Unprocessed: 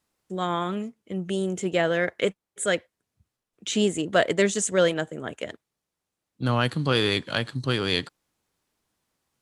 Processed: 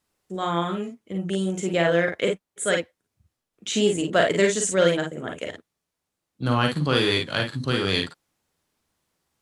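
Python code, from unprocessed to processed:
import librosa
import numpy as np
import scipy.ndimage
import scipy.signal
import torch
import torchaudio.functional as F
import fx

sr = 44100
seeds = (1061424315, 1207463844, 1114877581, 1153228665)

y = fx.room_early_taps(x, sr, ms=(41, 53), db=(-6.0, -5.5))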